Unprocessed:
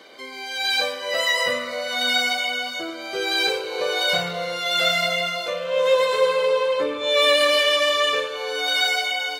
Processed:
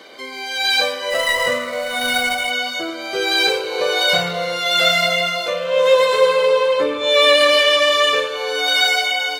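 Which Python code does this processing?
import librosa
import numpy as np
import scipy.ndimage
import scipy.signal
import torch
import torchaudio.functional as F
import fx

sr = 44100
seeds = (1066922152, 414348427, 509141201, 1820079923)

y = fx.median_filter(x, sr, points=9, at=(1.1, 2.51))
y = fx.high_shelf(y, sr, hz=9500.0, db=-6.5, at=(7.17, 7.92))
y = y * librosa.db_to_amplitude(5.0)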